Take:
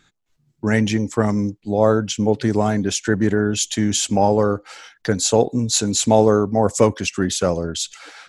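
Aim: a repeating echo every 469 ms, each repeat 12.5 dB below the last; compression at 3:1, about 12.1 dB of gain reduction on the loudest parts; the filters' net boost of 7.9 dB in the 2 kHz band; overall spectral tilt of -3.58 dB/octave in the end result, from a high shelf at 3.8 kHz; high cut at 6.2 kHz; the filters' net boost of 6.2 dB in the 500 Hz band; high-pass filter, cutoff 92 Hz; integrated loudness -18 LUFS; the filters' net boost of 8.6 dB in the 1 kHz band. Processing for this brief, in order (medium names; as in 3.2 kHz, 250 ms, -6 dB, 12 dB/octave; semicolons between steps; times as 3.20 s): high-pass 92 Hz; low-pass 6.2 kHz; peaking EQ 500 Hz +5 dB; peaking EQ 1 kHz +8 dB; peaking EQ 2 kHz +6 dB; treble shelf 3.8 kHz +4.5 dB; compression 3:1, threshold -20 dBFS; feedback delay 469 ms, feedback 24%, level -12.5 dB; trim +4.5 dB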